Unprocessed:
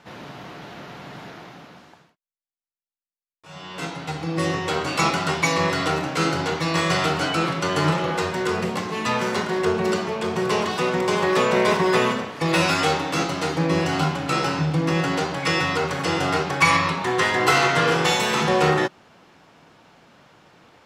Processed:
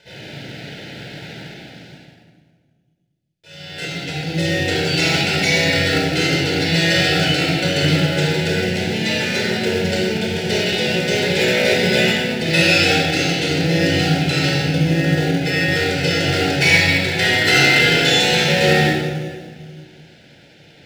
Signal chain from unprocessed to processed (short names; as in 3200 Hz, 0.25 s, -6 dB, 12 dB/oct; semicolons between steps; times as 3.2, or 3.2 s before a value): 14.8–15.72 high shelf 2300 Hz -9.5 dB; reverb RT60 1.7 s, pre-delay 31 ms, DRR -3 dB; in parallel at -11 dB: sample-and-hold 14×; on the sum: Butterworth band-stop 1100 Hz, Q 1.5; bell 3600 Hz +10 dB 2.2 oct; gain -6 dB